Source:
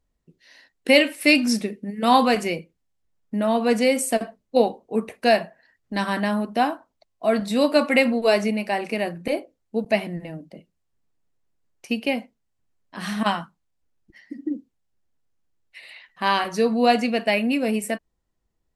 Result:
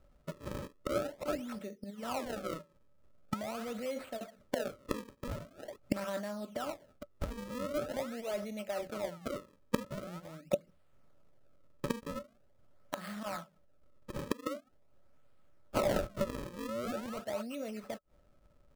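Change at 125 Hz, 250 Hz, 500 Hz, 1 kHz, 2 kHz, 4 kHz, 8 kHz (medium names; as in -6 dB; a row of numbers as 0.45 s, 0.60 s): -8.5 dB, -16.5 dB, -14.5 dB, -18.0 dB, -21.0 dB, -20.0 dB, -14.5 dB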